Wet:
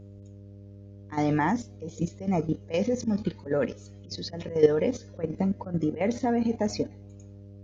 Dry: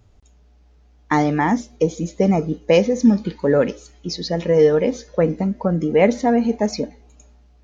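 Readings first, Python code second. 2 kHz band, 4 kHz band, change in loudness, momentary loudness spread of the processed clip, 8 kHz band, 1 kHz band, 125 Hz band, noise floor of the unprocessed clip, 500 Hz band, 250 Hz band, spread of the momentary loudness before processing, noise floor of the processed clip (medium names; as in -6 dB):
-10.0 dB, -9.0 dB, -9.0 dB, 23 LU, no reading, -9.0 dB, -7.5 dB, -53 dBFS, -10.0 dB, -9.0 dB, 9 LU, -47 dBFS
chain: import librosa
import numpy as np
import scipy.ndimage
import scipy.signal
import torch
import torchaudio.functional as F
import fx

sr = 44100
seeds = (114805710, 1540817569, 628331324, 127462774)

y = fx.auto_swell(x, sr, attack_ms=150.0)
y = fx.dmg_buzz(y, sr, base_hz=100.0, harmonics=6, level_db=-38.0, tilt_db=-7, odd_only=False)
y = fx.level_steps(y, sr, step_db=11)
y = y * 10.0 ** (-2.0 / 20.0)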